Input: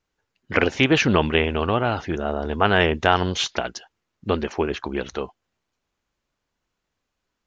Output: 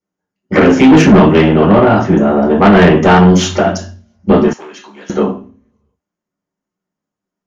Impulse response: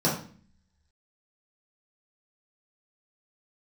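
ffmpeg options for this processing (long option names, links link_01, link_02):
-filter_complex "[0:a]agate=range=-17dB:threshold=-36dB:ratio=16:detection=peak[link_01];[1:a]atrim=start_sample=2205,asetrate=52920,aresample=44100[link_02];[link_01][link_02]afir=irnorm=-1:irlink=0,asoftclip=type=tanh:threshold=-1.5dB,asettb=1/sr,asplit=3[link_03][link_04][link_05];[link_03]atrim=end=4.534[link_06];[link_04]atrim=start=4.53:end=5.1,asetpts=PTS-STARTPTS,afade=type=in:duration=0.004:curve=qsin,afade=type=out:start_time=0.566:duration=0.004:curve=qsin,aderivative[link_07];[link_05]atrim=start=5.096[link_08];[link_06][link_07]acrossfade=duration=0.004:curve1=hsin:curve2=qsin[link_09];[link_09][link_08]acrossfade=duration=0.004:curve1=qsin:curve2=hsin"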